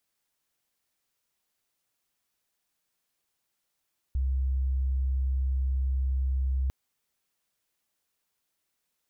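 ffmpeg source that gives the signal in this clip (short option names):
-f lavfi -i "sine=f=65.8:d=2.55:r=44100,volume=-5.94dB"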